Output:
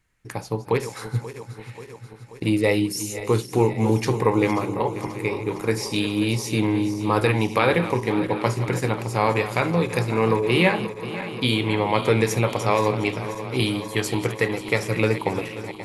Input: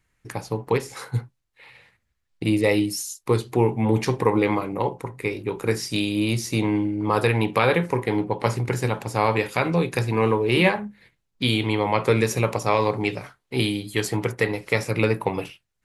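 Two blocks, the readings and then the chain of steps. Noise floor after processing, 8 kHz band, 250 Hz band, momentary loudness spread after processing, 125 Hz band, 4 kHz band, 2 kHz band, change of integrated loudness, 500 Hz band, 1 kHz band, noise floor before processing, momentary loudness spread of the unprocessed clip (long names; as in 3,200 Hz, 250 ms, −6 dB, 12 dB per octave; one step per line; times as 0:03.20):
−42 dBFS, +0.5 dB, +0.5 dB, 10 LU, +0.5 dB, +0.5 dB, +0.5 dB, +0.5 dB, +0.5 dB, +0.5 dB, −75 dBFS, 9 LU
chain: feedback delay that plays each chunk backwards 267 ms, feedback 80%, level −13 dB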